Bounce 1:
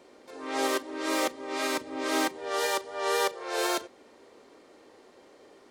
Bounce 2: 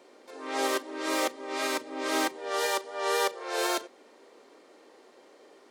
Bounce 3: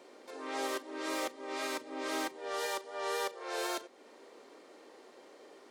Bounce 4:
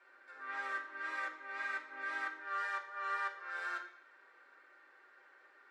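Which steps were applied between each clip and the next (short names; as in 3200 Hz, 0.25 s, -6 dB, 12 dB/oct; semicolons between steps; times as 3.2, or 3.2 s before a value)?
HPF 260 Hz 12 dB/oct
compressor 1.5:1, threshold -44 dBFS, peak gain reduction 8 dB; soft clip -21.5 dBFS, distortion -26 dB
band-pass 1500 Hz, Q 4.7; reverb RT60 0.65 s, pre-delay 3 ms, DRR -3.5 dB; gain +3.5 dB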